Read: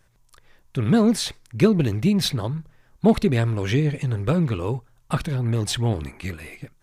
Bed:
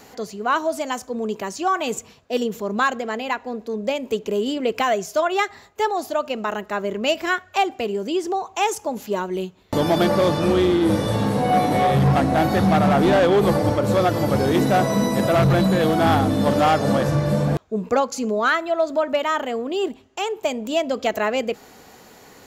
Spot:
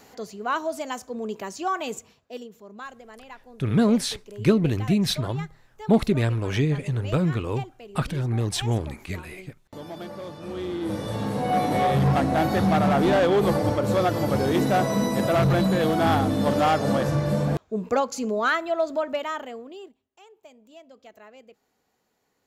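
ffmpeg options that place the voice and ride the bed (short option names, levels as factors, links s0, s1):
-filter_complex "[0:a]adelay=2850,volume=0.794[s0];[1:a]volume=3.16,afade=t=out:st=1.8:d=0.69:silence=0.211349,afade=t=in:st=10.39:d=1.41:silence=0.16788,afade=t=out:st=18.78:d=1.16:silence=0.0707946[s1];[s0][s1]amix=inputs=2:normalize=0"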